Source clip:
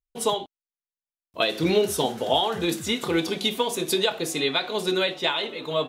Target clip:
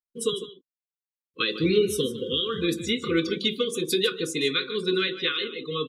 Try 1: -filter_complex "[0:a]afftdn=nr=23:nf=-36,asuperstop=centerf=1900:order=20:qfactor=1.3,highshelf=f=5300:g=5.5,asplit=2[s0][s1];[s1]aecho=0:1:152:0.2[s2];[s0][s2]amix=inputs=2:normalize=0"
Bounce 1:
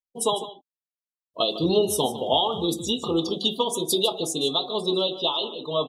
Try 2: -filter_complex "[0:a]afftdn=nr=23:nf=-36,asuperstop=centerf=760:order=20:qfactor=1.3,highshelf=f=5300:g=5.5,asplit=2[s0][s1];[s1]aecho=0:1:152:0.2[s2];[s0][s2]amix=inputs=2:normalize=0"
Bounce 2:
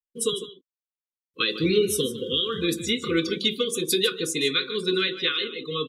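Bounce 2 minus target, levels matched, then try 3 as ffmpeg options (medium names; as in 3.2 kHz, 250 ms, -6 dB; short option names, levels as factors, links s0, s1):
8 kHz band +4.5 dB
-filter_complex "[0:a]afftdn=nr=23:nf=-36,asuperstop=centerf=760:order=20:qfactor=1.3,highshelf=f=5300:g=-2,asplit=2[s0][s1];[s1]aecho=0:1:152:0.2[s2];[s0][s2]amix=inputs=2:normalize=0"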